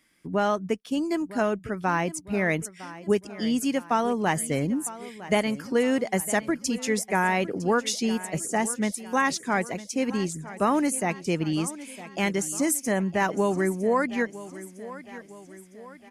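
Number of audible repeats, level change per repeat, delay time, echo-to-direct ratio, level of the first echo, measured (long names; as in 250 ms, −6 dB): 4, −6.0 dB, 957 ms, −15.0 dB, −16.0 dB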